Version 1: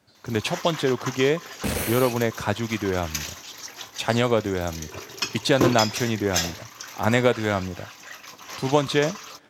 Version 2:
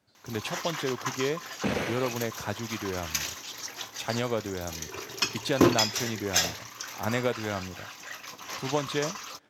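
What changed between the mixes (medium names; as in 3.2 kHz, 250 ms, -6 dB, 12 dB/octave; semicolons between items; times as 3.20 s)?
speech -8.5 dB; second sound: add band-pass 140–3000 Hz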